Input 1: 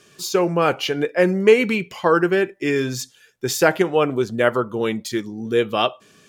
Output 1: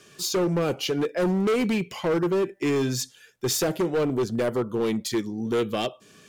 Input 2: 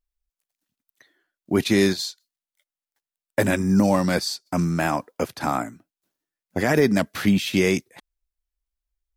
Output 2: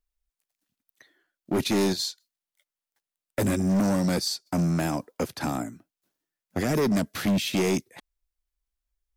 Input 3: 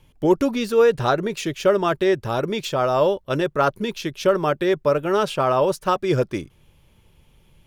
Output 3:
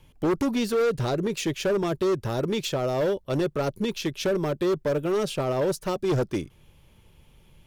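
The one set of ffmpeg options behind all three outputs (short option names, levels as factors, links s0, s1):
-filter_complex "[0:a]acrossover=split=530|3600[s0][s1][s2];[s1]acompressor=threshold=0.0224:ratio=6[s3];[s0][s3][s2]amix=inputs=3:normalize=0,asoftclip=type=hard:threshold=0.1"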